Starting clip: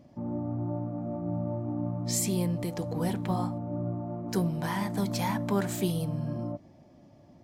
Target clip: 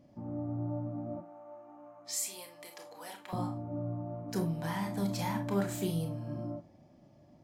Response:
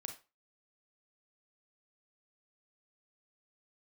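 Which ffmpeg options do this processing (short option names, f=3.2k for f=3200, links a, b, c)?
-filter_complex "[0:a]asettb=1/sr,asplit=3[a][b][c];[a]atrim=end=1.174[d];[b]atrim=start=1.17:end=3.33,asetpts=PTS-STARTPTS,afade=t=in:d=0.004:c=qsin,afade=t=out:st=2.156:d=0.004:c=qsin,highpass=920[e];[c]atrim=start=3.326[f];[d][e]acrossfade=d=0.004:c1=hsin:c2=qsin[g];[g][f]acrossfade=d=0.004:c1=qsin:c2=hsin[h];[1:a]atrim=start_sample=2205,asetrate=52920,aresample=44100[i];[h][i]afir=irnorm=-1:irlink=0"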